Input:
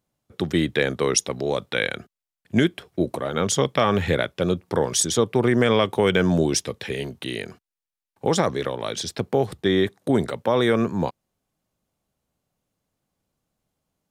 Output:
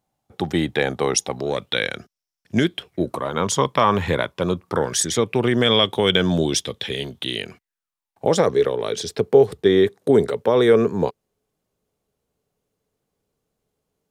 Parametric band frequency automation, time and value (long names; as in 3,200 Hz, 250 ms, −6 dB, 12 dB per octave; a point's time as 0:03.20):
parametric band +13 dB 0.31 octaves
0:01.34 790 Hz
0:01.85 5,500 Hz
0:02.59 5,500 Hz
0:03.21 1,000 Hz
0:04.53 1,000 Hz
0:05.59 3,400 Hz
0:07.33 3,400 Hz
0:08.47 430 Hz